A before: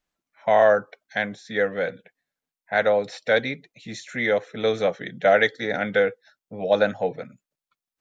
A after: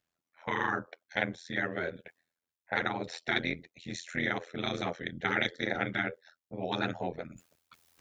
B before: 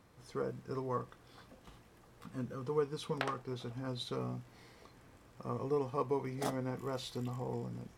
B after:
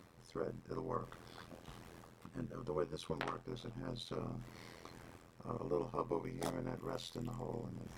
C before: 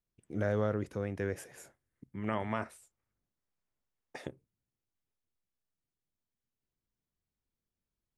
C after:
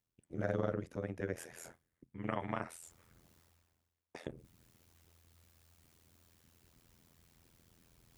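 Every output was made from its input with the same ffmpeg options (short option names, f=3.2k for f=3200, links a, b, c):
-af "tremolo=f=84:d=0.974,highpass=43,areverse,acompressor=mode=upward:threshold=-43dB:ratio=2.5,areverse,afftfilt=real='re*lt(hypot(re,im),0.224)':imag='im*lt(hypot(re,im),0.224)':win_size=1024:overlap=0.75"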